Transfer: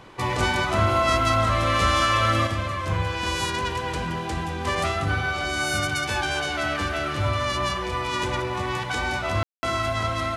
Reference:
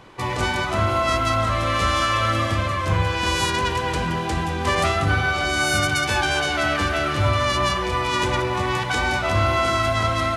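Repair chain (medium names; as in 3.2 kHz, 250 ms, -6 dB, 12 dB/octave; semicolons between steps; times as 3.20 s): room tone fill 9.43–9.63 s; trim 0 dB, from 2.47 s +4.5 dB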